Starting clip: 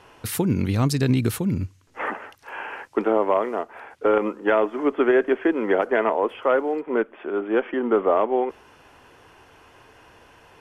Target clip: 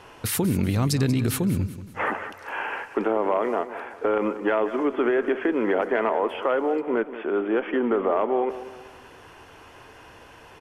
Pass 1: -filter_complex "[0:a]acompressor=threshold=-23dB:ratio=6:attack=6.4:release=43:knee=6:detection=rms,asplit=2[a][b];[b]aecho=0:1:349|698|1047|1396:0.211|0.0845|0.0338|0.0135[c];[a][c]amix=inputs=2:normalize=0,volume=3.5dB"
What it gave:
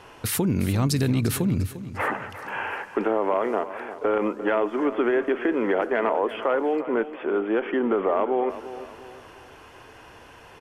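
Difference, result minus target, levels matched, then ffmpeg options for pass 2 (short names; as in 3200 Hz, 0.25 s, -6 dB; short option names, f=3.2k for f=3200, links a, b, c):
echo 0.161 s late
-filter_complex "[0:a]acompressor=threshold=-23dB:ratio=6:attack=6.4:release=43:knee=6:detection=rms,asplit=2[a][b];[b]aecho=0:1:188|376|564|752:0.211|0.0845|0.0338|0.0135[c];[a][c]amix=inputs=2:normalize=0,volume=3.5dB"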